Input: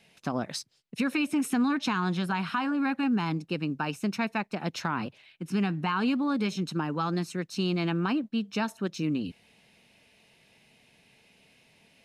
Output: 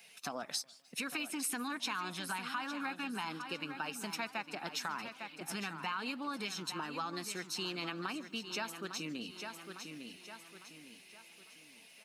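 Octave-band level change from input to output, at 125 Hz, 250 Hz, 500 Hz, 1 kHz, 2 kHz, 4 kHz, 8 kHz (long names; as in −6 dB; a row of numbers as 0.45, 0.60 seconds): −18.5, −15.5, −10.5, −7.5, −5.5, −2.0, +2.0 decibels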